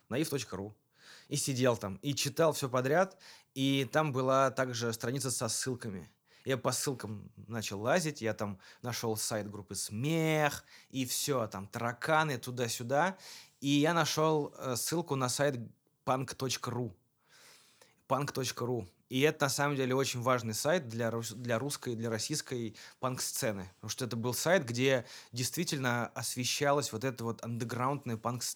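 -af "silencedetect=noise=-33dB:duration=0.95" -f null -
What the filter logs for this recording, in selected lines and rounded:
silence_start: 16.87
silence_end: 18.11 | silence_duration: 1.24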